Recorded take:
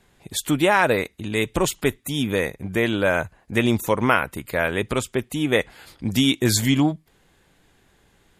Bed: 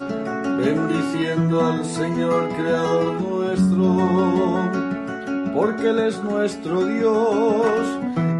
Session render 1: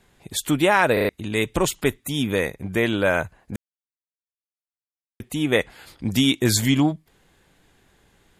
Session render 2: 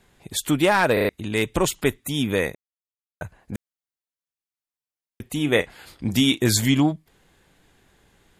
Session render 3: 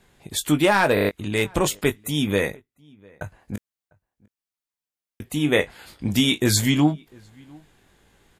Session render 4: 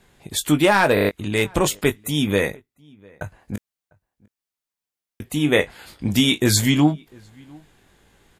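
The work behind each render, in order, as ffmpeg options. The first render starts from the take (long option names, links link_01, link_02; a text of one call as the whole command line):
ffmpeg -i in.wav -filter_complex "[0:a]asplit=7[link_01][link_02][link_03][link_04][link_05][link_06][link_07];[link_01]atrim=end=0.972[link_08];[link_02]atrim=start=0.928:end=0.972[link_09];[link_03]atrim=start=0.928:end=0.972[link_10];[link_04]atrim=start=0.928:end=0.972[link_11];[link_05]atrim=start=1.088:end=3.56,asetpts=PTS-STARTPTS,afade=type=out:start_time=2.468:duration=0.004:curve=hsin[link_12];[link_06]atrim=start=3.56:end=5.2,asetpts=PTS-STARTPTS,volume=0[link_13];[link_07]atrim=start=5.2,asetpts=PTS-STARTPTS,afade=type=in:duration=0.004:curve=hsin[link_14];[link_08][link_09]acrossfade=duration=0.004:curve1=hsin:curve2=hsin[link_15];[link_15][link_10]acrossfade=duration=0.004:curve1=hsin:curve2=hsin[link_16];[link_16][link_11]acrossfade=duration=0.004:curve1=hsin:curve2=hsin[link_17];[link_12][link_13][link_14]concat=n=3:v=0:a=1[link_18];[link_17][link_18]acrossfade=duration=0.004:curve1=hsin:curve2=hsin" out.wav
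ffmpeg -i in.wav -filter_complex "[0:a]asettb=1/sr,asplit=3[link_01][link_02][link_03];[link_01]atrim=end=0.564[link_04];[link_02]atrim=start=0.56:end=1.78,asetpts=PTS-STARTPTS,afade=type=in:duration=0.004:curve=qsin,afade=type=out:start_time=1.216:duration=0.004:curve=qsin,aeval=exprs='clip(val(0),-1,0.266)':channel_layout=same[link_05];[link_03]atrim=start=1.776[link_06];[link_04][link_05]acrossfade=duration=0.004:curve1=hsin:curve2=qsin[link_07];[link_07][link_06]acrossfade=duration=0.004:curve1=qsin:curve2=hsin,asettb=1/sr,asplit=3[link_08][link_09][link_10];[link_08]atrim=end=5.224[link_11];[link_09]atrim=start=5.22:end=6.48,asetpts=PTS-STARTPTS,afade=type=in:duration=0.004:curve=qsin,afade=type=out:start_time=1.256:duration=0.004:curve=qsin,asplit=2[link_12][link_13];[link_13]adelay=34,volume=-13.5dB[link_14];[link_12][link_14]amix=inputs=2:normalize=0,atrim=end_sample=55566[link_15];[link_10]atrim=start=6.476[link_16];[link_11][link_15]acrossfade=duration=0.004:curve1=hsin:curve2=qsin[link_17];[link_17][link_16]acrossfade=duration=0.004:curve1=qsin:curve2=hsin,asplit=3[link_18][link_19][link_20];[link_18]atrim=end=2.55,asetpts=PTS-STARTPTS,afade=type=out:start_time=2.546:duration=0.004:curve=hsin[link_21];[link_19]atrim=start=2.55:end=3.21,asetpts=PTS-STARTPTS,volume=0[link_22];[link_20]atrim=start=3.21,asetpts=PTS-STARTPTS,afade=type=in:duration=0.004:curve=hsin[link_23];[link_21][link_22][link_23]concat=n=3:v=0:a=1" out.wav
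ffmpeg -i in.wav -filter_complex "[0:a]asplit=2[link_01][link_02];[link_02]adelay=20,volume=-9dB[link_03];[link_01][link_03]amix=inputs=2:normalize=0,asplit=2[link_04][link_05];[link_05]adelay=699.7,volume=-27dB,highshelf=frequency=4000:gain=-15.7[link_06];[link_04][link_06]amix=inputs=2:normalize=0" out.wav
ffmpeg -i in.wav -af "volume=2dB" out.wav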